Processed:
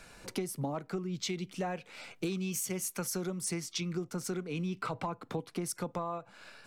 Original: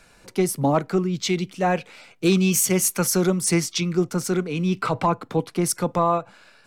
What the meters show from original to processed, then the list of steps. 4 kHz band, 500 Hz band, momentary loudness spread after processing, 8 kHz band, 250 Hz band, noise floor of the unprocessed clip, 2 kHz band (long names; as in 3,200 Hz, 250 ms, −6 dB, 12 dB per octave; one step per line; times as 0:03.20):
−11.5 dB, −15.0 dB, 5 LU, −13.5 dB, −14.5 dB, −55 dBFS, −13.0 dB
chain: downward compressor 8 to 1, threshold −33 dBFS, peak gain reduction 18 dB